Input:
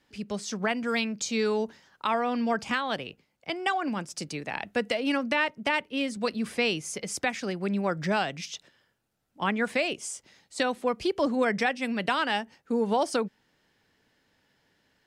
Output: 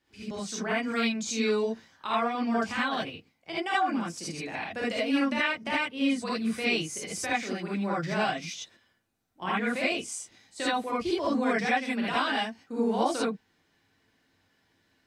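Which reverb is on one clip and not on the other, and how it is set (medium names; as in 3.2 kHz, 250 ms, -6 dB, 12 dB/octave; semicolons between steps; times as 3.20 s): gated-style reverb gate 100 ms rising, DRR -7.5 dB; trim -8.5 dB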